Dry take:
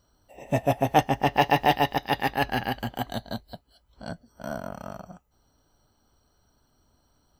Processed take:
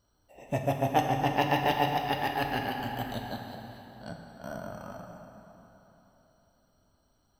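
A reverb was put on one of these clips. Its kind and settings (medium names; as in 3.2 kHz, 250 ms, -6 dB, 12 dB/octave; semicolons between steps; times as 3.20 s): plate-style reverb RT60 3.7 s, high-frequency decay 0.75×, DRR 2.5 dB; trim -6 dB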